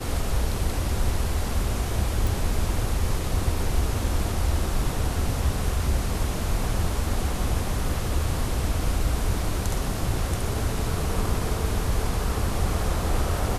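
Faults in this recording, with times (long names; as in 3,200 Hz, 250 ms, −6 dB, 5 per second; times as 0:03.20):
0:02.27: click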